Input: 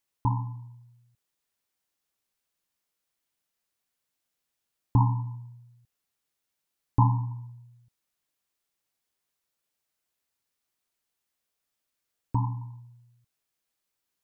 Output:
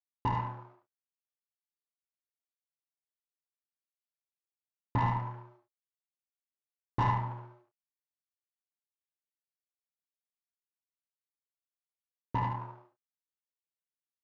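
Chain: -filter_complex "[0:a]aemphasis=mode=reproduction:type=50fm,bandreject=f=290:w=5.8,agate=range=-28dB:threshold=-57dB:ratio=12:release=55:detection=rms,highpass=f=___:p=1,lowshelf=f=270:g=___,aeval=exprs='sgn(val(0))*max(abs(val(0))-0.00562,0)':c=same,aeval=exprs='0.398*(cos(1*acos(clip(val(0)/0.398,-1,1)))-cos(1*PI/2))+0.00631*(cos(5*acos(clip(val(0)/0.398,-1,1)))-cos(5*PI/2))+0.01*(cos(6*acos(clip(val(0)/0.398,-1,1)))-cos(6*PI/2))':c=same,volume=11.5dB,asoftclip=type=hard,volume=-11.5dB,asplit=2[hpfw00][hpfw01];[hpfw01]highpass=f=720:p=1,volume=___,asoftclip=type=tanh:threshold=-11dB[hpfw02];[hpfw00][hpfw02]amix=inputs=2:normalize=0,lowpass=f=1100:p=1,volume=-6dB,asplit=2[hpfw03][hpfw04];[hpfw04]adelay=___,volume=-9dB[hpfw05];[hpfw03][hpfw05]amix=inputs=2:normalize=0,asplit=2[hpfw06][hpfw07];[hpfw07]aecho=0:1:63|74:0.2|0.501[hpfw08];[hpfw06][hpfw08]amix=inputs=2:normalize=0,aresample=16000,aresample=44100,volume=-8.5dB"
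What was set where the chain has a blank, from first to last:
160, 6.5, 25dB, 29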